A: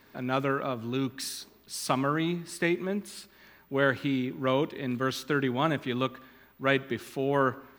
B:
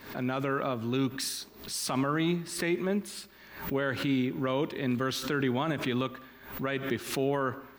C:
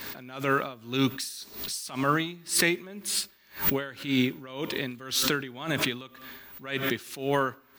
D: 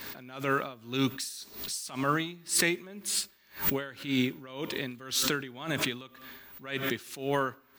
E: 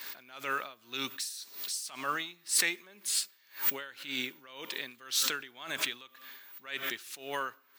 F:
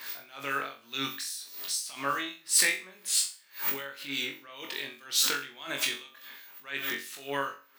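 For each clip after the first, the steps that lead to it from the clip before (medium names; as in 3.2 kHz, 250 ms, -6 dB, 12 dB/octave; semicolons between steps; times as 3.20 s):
peak limiter -21 dBFS, peak gain reduction 11.5 dB; swell ahead of each attack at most 98 dB/s; trim +2 dB
treble shelf 2.2 kHz +12 dB; logarithmic tremolo 1.9 Hz, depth 20 dB; trim +4.5 dB
dynamic bell 7.4 kHz, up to +4 dB, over -48 dBFS, Q 2.4; trim -3 dB
high-pass 1.4 kHz 6 dB/octave
harmonic tremolo 4.9 Hz, depth 50%, crossover 2.5 kHz; on a send: flutter echo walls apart 3.7 m, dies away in 0.33 s; on the sum: trim +3 dB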